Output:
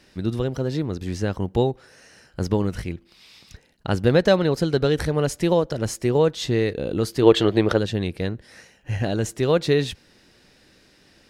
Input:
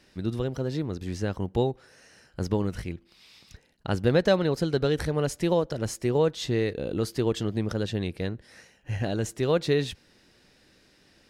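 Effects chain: time-frequency box 7.23–7.78 s, 320–4600 Hz +9 dB; trim +4.5 dB

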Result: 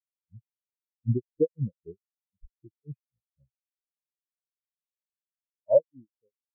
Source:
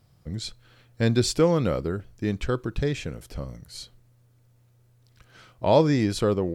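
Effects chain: fade out at the end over 1.32 s; granulator 207 ms, grains 3.9 per s, spray 17 ms, pitch spread up and down by 0 st; spectral contrast expander 4:1; trim +2.5 dB

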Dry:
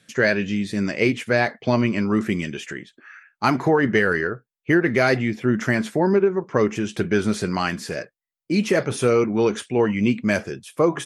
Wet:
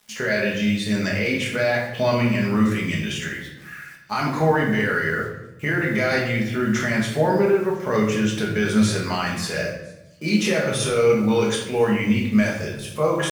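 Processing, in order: peaking EQ 310 Hz -10.5 dB 2.2 oct; peak limiter -19 dBFS, peak gain reduction 11 dB; tempo 0.83×; small resonant body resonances 520/3600 Hz, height 8 dB, ringing for 35 ms; bit crusher 9-bit; feedback echo behind a high-pass 1007 ms, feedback 71%, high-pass 4.7 kHz, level -24 dB; simulated room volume 290 m³, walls mixed, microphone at 1.4 m; trim +2.5 dB

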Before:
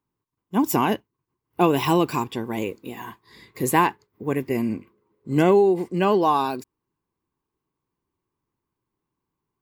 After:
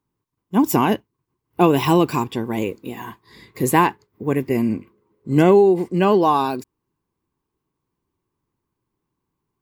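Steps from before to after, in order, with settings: bass shelf 410 Hz +3.5 dB; trim +2 dB

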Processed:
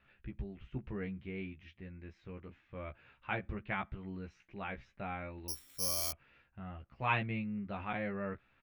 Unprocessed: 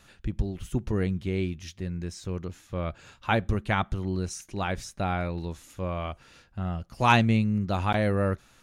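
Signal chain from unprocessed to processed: four-pole ladder low-pass 2.8 kHz, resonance 45%; 5.48–6.11 s: careless resampling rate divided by 8×, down filtered, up zero stuff; doubling 15 ms -3.5 dB; trim -6 dB

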